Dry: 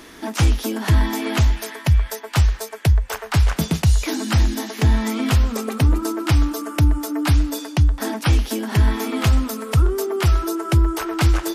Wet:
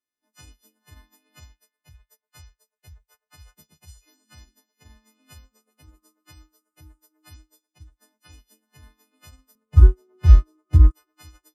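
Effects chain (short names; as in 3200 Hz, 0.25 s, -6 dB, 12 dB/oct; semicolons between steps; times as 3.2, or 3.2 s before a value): frequency quantiser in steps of 3 st; 9.55–10.91 RIAA curve playback; upward expander 2.5:1, over -30 dBFS; gain -6.5 dB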